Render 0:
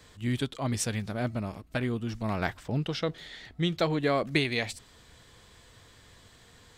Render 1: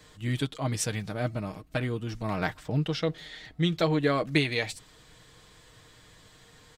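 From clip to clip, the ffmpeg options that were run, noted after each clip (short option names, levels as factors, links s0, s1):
-af "aecho=1:1:6.5:0.45"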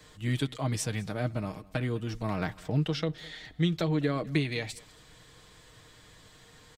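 -filter_complex "[0:a]acrossover=split=320[s0][s1];[s1]acompressor=threshold=0.0282:ratio=6[s2];[s0][s2]amix=inputs=2:normalize=0,aecho=1:1:204:0.0708"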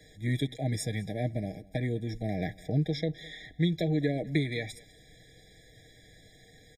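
-af "afftfilt=real='re*eq(mod(floor(b*sr/1024/810),2),0)':imag='im*eq(mod(floor(b*sr/1024/810),2),0)':win_size=1024:overlap=0.75"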